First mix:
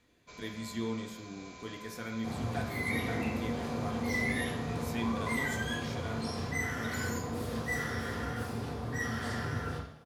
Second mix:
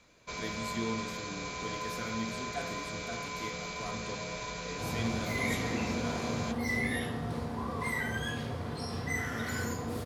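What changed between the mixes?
first sound +11.5 dB; second sound: entry +2.55 s

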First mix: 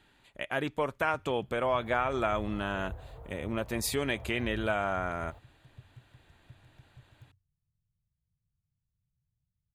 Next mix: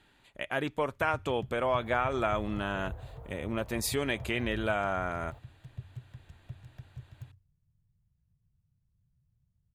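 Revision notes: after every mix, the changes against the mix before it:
first sound +9.5 dB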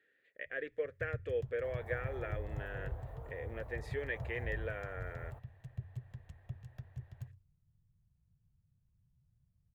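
speech: add double band-pass 930 Hz, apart 1.9 oct

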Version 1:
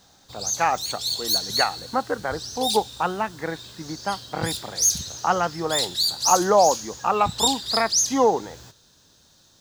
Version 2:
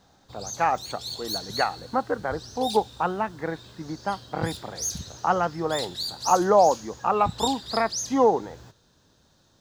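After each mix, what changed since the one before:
master: add high shelf 2700 Hz -12 dB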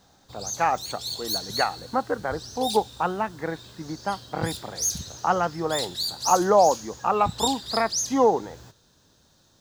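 master: add high shelf 5600 Hz +7 dB

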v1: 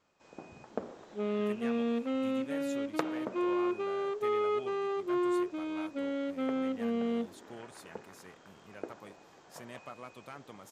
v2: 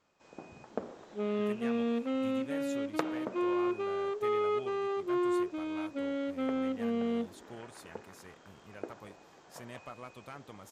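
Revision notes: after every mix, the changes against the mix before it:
speech: remove HPF 130 Hz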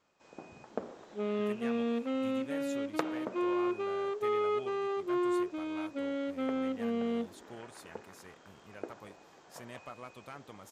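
master: add low shelf 160 Hz -3.5 dB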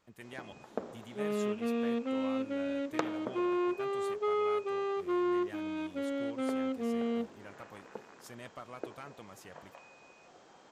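speech: entry -1.30 s

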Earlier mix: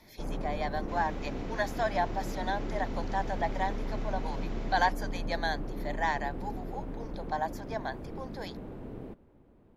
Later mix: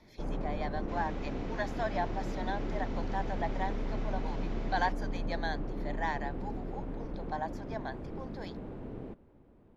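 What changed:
speech -4.0 dB; master: add air absorption 58 m

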